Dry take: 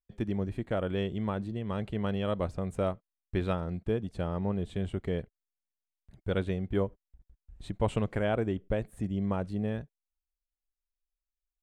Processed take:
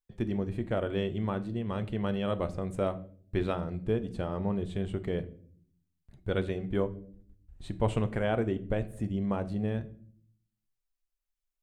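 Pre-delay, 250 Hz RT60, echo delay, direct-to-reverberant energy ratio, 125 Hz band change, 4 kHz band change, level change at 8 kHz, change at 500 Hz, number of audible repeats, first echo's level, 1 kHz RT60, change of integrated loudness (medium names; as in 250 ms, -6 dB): 3 ms, 0.95 s, no echo, 10.5 dB, 0.0 dB, 0.0 dB, no reading, +0.5 dB, no echo, no echo, 0.40 s, +0.5 dB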